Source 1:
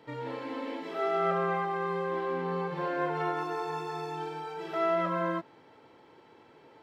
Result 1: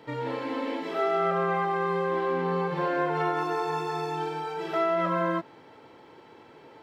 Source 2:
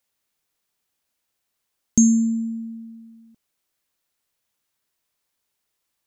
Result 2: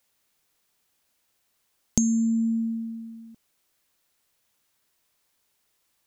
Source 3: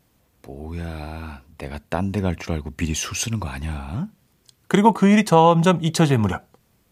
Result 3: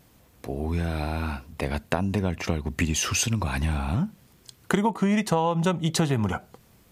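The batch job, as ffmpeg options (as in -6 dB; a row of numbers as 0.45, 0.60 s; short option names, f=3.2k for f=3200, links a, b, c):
-af "acompressor=threshold=-27dB:ratio=5,volume=5.5dB"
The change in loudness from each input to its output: +4.0, -6.0, -6.0 LU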